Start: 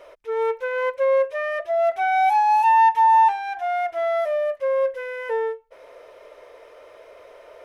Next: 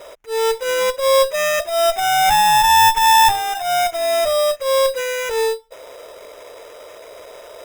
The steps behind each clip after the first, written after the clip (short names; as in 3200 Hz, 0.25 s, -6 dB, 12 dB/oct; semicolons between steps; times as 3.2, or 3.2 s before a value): one-sided clip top -27 dBFS; transient shaper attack -12 dB, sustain 0 dB; sample-rate reducer 4400 Hz, jitter 0%; gain +8.5 dB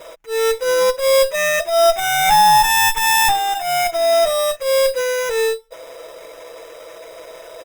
comb 6.1 ms, depth 60%